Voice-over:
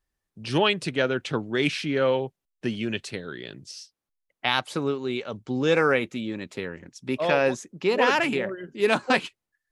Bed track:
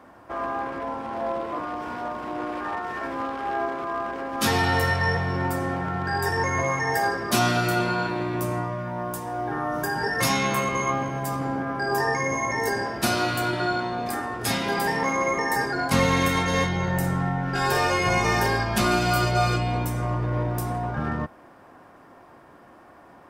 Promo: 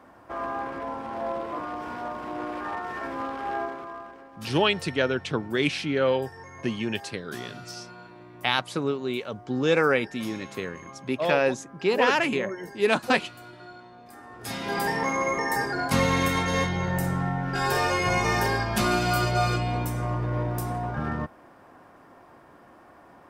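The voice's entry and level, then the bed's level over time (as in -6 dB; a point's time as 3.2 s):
4.00 s, -0.5 dB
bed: 3.56 s -2.5 dB
4.42 s -20 dB
14.07 s -20 dB
14.78 s -2 dB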